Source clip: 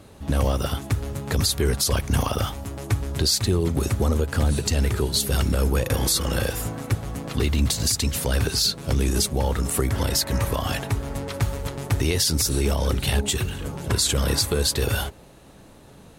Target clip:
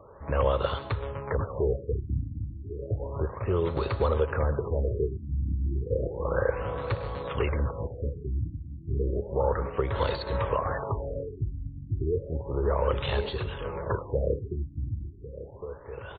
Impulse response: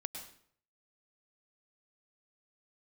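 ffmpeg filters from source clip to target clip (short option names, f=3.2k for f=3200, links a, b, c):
-filter_complex "[0:a]equalizer=f=250:t=o:w=1:g=-11,equalizer=f=500:t=o:w=1:g=11,equalizer=f=1k:t=o:w=1:g=12,equalizer=f=8k:t=o:w=1:g=11,acrossover=split=740[a][b];[b]alimiter=limit=-12dB:level=0:latency=1:release=328[c];[a][c]amix=inputs=2:normalize=0,equalizer=f=760:t=o:w=0.54:g=-9,asplit=2[d][e];[e]adelay=1105,lowpass=f=4.1k:p=1,volume=-13.5dB,asplit=2[f][g];[g]adelay=1105,lowpass=f=4.1k:p=1,volume=0.37,asplit=2[h][i];[i]adelay=1105,lowpass=f=4.1k:p=1,volume=0.37,asplit=2[j][k];[k]adelay=1105,lowpass=f=4.1k:p=1,volume=0.37[l];[d][f][h][j][l]amix=inputs=5:normalize=0,asplit=2[m][n];[1:a]atrim=start_sample=2205[o];[n][o]afir=irnorm=-1:irlink=0,volume=-6.5dB[p];[m][p]amix=inputs=2:normalize=0,afftfilt=real='re*lt(b*sr/1024,310*pow(4600/310,0.5+0.5*sin(2*PI*0.32*pts/sr)))':imag='im*lt(b*sr/1024,310*pow(4600/310,0.5+0.5*sin(2*PI*0.32*pts/sr)))':win_size=1024:overlap=0.75,volume=-8.5dB"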